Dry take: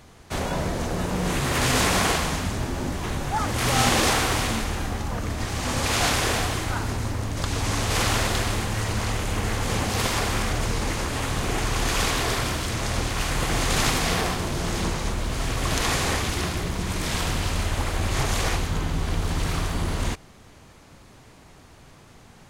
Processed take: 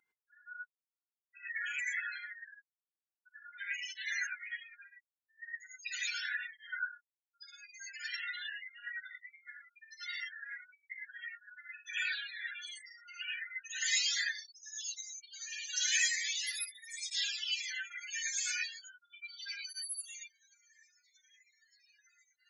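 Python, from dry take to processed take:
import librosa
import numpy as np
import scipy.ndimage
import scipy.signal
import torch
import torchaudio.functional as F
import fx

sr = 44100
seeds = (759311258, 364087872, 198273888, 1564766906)

y = fx.high_shelf(x, sr, hz=2700.0, db=fx.steps((0.0, 5.5), (13.81, 11.5)))
y = fx.spec_topn(y, sr, count=16)
y = fx.brickwall_highpass(y, sr, low_hz=1400.0)
y = fx.rev_gated(y, sr, seeds[0], gate_ms=130, shape='rising', drr_db=-5.0)
y = fx.flanger_cancel(y, sr, hz=0.38, depth_ms=1.7)
y = y * 10.0 ** (-1.5 / 20.0)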